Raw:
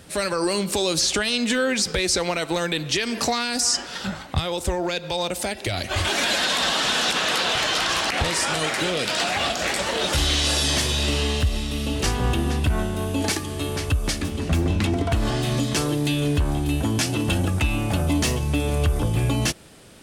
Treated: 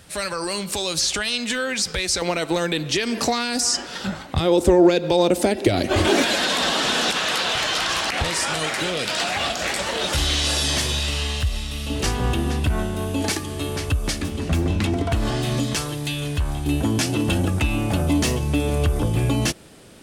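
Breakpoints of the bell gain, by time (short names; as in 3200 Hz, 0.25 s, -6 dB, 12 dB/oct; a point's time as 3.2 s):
bell 320 Hz 1.9 oct
-6.5 dB
from 2.22 s +3.5 dB
from 4.4 s +15 dB
from 6.22 s +5.5 dB
from 7.11 s -1.5 dB
from 10.99 s -9.5 dB
from 11.9 s +0.5 dB
from 15.75 s -8.5 dB
from 16.66 s +3 dB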